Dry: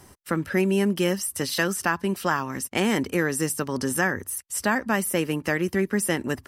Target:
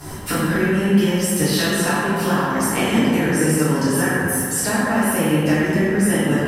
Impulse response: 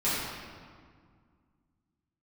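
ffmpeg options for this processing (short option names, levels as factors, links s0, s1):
-filter_complex "[0:a]acompressor=threshold=0.0158:ratio=10[s0];[1:a]atrim=start_sample=2205,asetrate=32193,aresample=44100[s1];[s0][s1]afir=irnorm=-1:irlink=0,volume=2.37"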